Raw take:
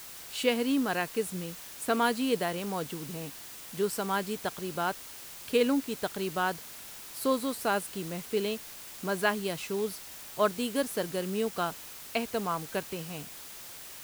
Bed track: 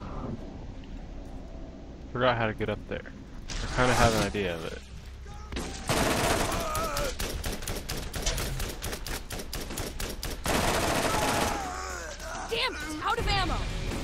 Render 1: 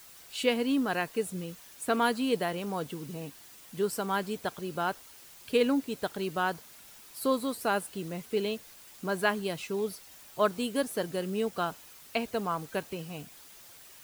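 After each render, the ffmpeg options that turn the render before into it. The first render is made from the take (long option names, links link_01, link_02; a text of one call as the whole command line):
ffmpeg -i in.wav -af "afftdn=noise_reduction=8:noise_floor=-46" out.wav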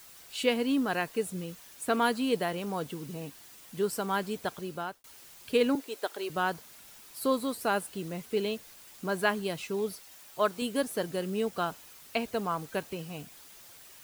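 ffmpeg -i in.wav -filter_complex "[0:a]asettb=1/sr,asplit=3[link_01][link_02][link_03];[link_01]atrim=end=5.754[link_04];[link_02]atrim=start=5.75:end=6.3,asetpts=PTS-STARTPTS,afade=type=in:duration=0.004:curve=qsin,afade=type=out:start_time=0.546:duration=0.004:curve=qsin,highpass=frequency=340:width=0.5412,highpass=frequency=340:width=1.3066[link_05];[link_03]atrim=start=6.296[link_06];[link_04][link_05]acrossfade=duration=0.004:curve1=hsin:curve2=qsin[link_07];[link_07][link_06]acrossfade=duration=0.004:curve1=qsin:curve2=hsin,asettb=1/sr,asplit=3[link_08][link_09][link_10];[link_08]atrim=end=10.004[link_11];[link_09]atrim=start=10:end=10.62,asetpts=PTS-STARTPTS,afade=type=in:duration=0.004:curve=qsin,afade=type=out:start_time=0.616:duration=0.004:curve=qsin,lowshelf=frequency=260:gain=-7.5[link_12];[link_10]atrim=start=10.616[link_13];[link_11][link_12]acrossfade=duration=0.004:curve1=hsin:curve2=qsin[link_14];[link_14][link_13]acrossfade=duration=0.004:curve1=qsin:curve2=hsin,asplit=2[link_15][link_16];[link_15]atrim=end=5.04,asetpts=PTS-STARTPTS,afade=type=out:start_time=4.47:duration=0.57:curve=qsin[link_17];[link_16]atrim=start=5.04,asetpts=PTS-STARTPTS,afade=type=in:duration=0.004:curve=hsin[link_18];[link_17][link_18]concat=n=2:v=0:a=1" out.wav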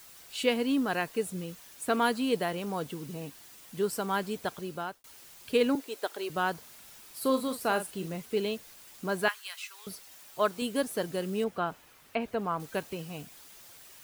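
ffmpeg -i in.wav -filter_complex "[0:a]asettb=1/sr,asplit=3[link_01][link_02][link_03];[link_01]atrim=end=6.584[link_04];[link_02]atrim=start=6.58:end=8.16,asetpts=PTS-STARTPTS,afade=type=in:duration=0.004:curve=qsin,afade=type=out:start_time=1.576:duration=0.004:curve=qsin,asplit=2[link_05][link_06];[link_06]adelay=42,volume=-9.5dB[link_07];[link_05][link_07]amix=inputs=2:normalize=0,atrim=end_sample=69678[link_08];[link_03]atrim=start=8.156[link_09];[link_04][link_08]acrossfade=duration=0.004:curve1=hsin:curve2=qsin[link_10];[link_10][link_09]acrossfade=duration=0.004:curve1=qsin:curve2=hsin,asettb=1/sr,asplit=3[link_11][link_12][link_13];[link_11]atrim=end=9.284[link_14];[link_12]atrim=start=9.28:end=9.87,asetpts=PTS-STARTPTS,afade=type=in:duration=0.004:curve=qsin,afade=type=out:start_time=0.586:duration=0.004:curve=qsin,highpass=frequency=1200:width=0.5412,highpass=frequency=1200:width=1.3066[link_15];[link_13]atrim=start=9.866[link_16];[link_14][link_15]acrossfade=duration=0.004:curve1=hsin:curve2=qsin[link_17];[link_17][link_16]acrossfade=duration=0.004:curve1=qsin:curve2=hsin,asettb=1/sr,asplit=3[link_18][link_19][link_20];[link_18]atrim=end=11.444[link_21];[link_19]atrim=start=11.44:end=12.6,asetpts=PTS-STARTPTS,afade=type=in:duration=0.004:curve=qsin,afade=type=out:start_time=1.156:duration=0.004:curve=qsin,acrossover=split=2900[link_22][link_23];[link_23]acompressor=threshold=-58dB:ratio=4:attack=1:release=60[link_24];[link_22][link_24]amix=inputs=2:normalize=0[link_25];[link_20]atrim=start=12.596[link_26];[link_21][link_25]acrossfade=duration=0.004:curve1=hsin:curve2=qsin[link_27];[link_27][link_26]acrossfade=duration=0.004:curve1=qsin:curve2=hsin" out.wav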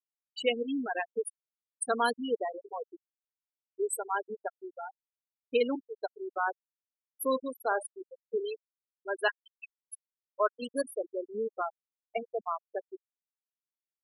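ffmpeg -i in.wav -af "bass=frequency=250:gain=-12,treble=frequency=4000:gain=10,afftfilt=real='re*gte(hypot(re,im),0.1)':imag='im*gte(hypot(re,im),0.1)':win_size=1024:overlap=0.75" out.wav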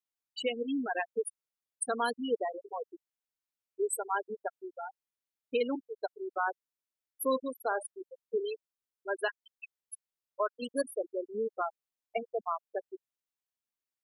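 ffmpeg -i in.wav -af "alimiter=limit=-20dB:level=0:latency=1:release=180" out.wav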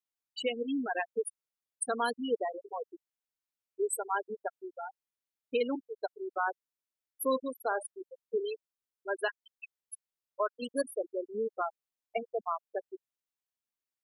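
ffmpeg -i in.wav -af anull out.wav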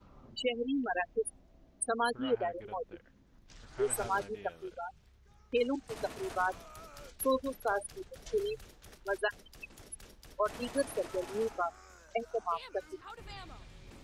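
ffmpeg -i in.wav -i bed.wav -filter_complex "[1:a]volume=-20dB[link_01];[0:a][link_01]amix=inputs=2:normalize=0" out.wav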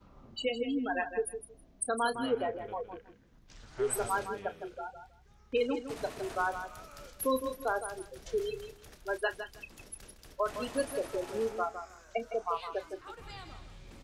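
ffmpeg -i in.wav -filter_complex "[0:a]asplit=2[link_01][link_02];[link_02]adelay=31,volume=-13dB[link_03];[link_01][link_03]amix=inputs=2:normalize=0,aecho=1:1:160|320:0.335|0.0569" out.wav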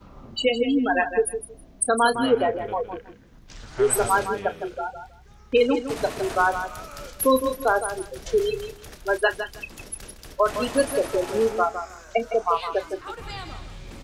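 ffmpeg -i in.wav -af "volume=11dB" out.wav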